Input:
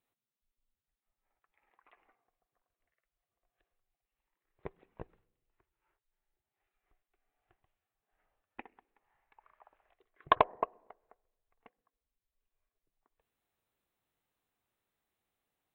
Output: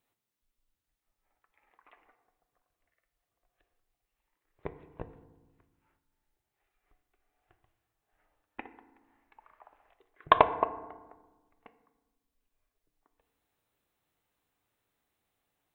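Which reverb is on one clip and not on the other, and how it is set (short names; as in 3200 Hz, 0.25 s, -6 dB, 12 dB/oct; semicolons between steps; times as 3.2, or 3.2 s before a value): FDN reverb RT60 1.2 s, low-frequency decay 1.45×, high-frequency decay 0.45×, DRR 10 dB; gain +4.5 dB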